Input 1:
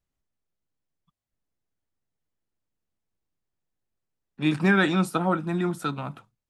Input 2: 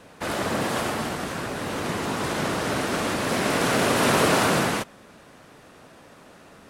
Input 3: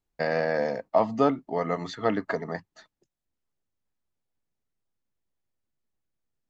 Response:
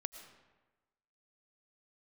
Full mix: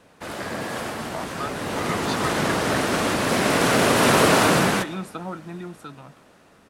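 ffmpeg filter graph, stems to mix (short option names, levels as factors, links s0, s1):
-filter_complex "[0:a]volume=0.211[s0];[1:a]volume=0.355,asplit=2[s1][s2];[s2]volume=0.668[s3];[2:a]highpass=1200,adelay=200,volume=0.841[s4];[s0][s4]amix=inputs=2:normalize=0,acompressor=threshold=0.0141:ratio=2,volume=1[s5];[3:a]atrim=start_sample=2205[s6];[s3][s6]afir=irnorm=-1:irlink=0[s7];[s1][s5][s7]amix=inputs=3:normalize=0,dynaudnorm=f=230:g=13:m=2.82"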